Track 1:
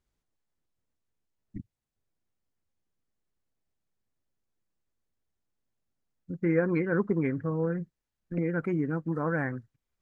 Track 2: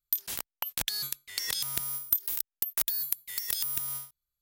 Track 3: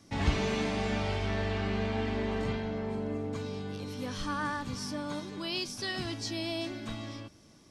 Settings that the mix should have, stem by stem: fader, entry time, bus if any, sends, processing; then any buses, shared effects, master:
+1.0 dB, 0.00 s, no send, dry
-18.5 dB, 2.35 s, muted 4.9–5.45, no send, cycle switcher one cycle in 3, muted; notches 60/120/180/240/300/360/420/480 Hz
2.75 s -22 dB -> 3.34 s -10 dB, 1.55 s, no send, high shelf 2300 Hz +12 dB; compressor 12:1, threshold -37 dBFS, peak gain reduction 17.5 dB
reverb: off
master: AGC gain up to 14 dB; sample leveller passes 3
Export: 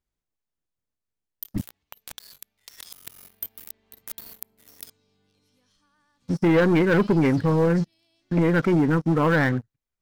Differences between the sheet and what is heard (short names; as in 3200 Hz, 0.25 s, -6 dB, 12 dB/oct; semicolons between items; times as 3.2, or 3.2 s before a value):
stem 2: entry 2.35 s -> 1.30 s; stem 3 -22.0 dB -> -33.5 dB; master: missing AGC gain up to 14 dB